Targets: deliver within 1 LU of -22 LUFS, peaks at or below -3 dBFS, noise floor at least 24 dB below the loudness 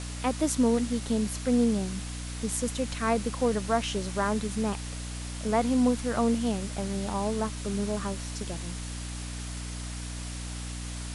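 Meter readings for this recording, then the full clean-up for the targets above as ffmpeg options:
hum 60 Hz; harmonics up to 300 Hz; hum level -35 dBFS; noise floor -37 dBFS; noise floor target -54 dBFS; loudness -29.5 LUFS; peak -12.0 dBFS; loudness target -22.0 LUFS
-> -af "bandreject=f=60:t=h:w=6,bandreject=f=120:t=h:w=6,bandreject=f=180:t=h:w=6,bandreject=f=240:t=h:w=6,bandreject=f=300:t=h:w=6"
-af "afftdn=nr=17:nf=-37"
-af "volume=7.5dB"

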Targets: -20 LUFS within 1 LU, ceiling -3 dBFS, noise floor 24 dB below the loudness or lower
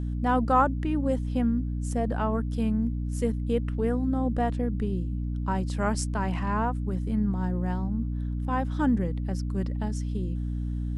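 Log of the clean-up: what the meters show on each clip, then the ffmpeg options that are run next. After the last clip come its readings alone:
hum 60 Hz; harmonics up to 300 Hz; hum level -27 dBFS; loudness -28.0 LUFS; peak -9.5 dBFS; loudness target -20.0 LUFS
-> -af "bandreject=f=60:t=h:w=4,bandreject=f=120:t=h:w=4,bandreject=f=180:t=h:w=4,bandreject=f=240:t=h:w=4,bandreject=f=300:t=h:w=4"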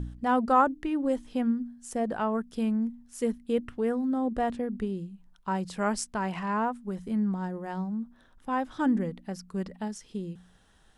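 hum none; loudness -30.0 LUFS; peak -10.5 dBFS; loudness target -20.0 LUFS
-> -af "volume=10dB,alimiter=limit=-3dB:level=0:latency=1"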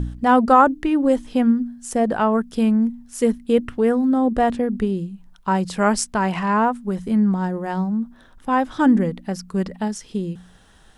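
loudness -20.5 LUFS; peak -3.0 dBFS; noise floor -50 dBFS

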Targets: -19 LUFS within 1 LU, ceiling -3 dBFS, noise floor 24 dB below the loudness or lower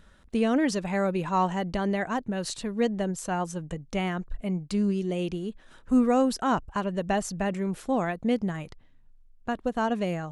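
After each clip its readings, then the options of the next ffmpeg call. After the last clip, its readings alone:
loudness -28.0 LUFS; peak -12.5 dBFS; loudness target -19.0 LUFS
-> -af "volume=9dB"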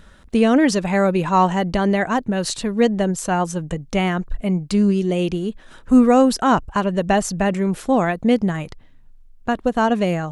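loudness -19.0 LUFS; peak -3.5 dBFS; noise floor -46 dBFS

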